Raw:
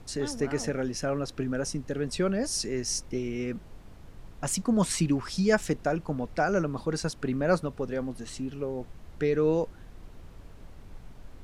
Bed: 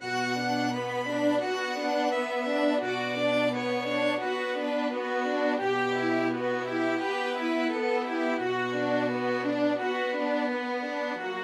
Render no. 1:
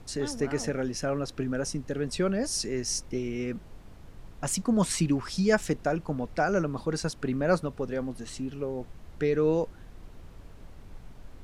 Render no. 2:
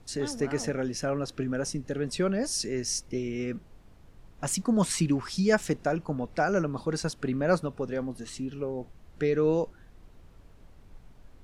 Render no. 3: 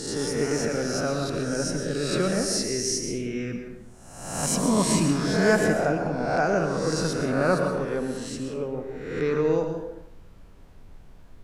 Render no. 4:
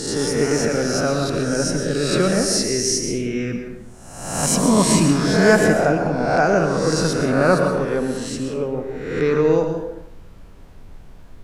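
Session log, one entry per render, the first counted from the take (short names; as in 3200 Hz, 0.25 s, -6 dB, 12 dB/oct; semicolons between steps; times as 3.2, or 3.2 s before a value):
nothing audible
noise print and reduce 6 dB
spectral swells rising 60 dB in 0.95 s; plate-style reverb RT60 0.88 s, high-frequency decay 0.55×, pre-delay 0.1 s, DRR 5 dB
gain +6.5 dB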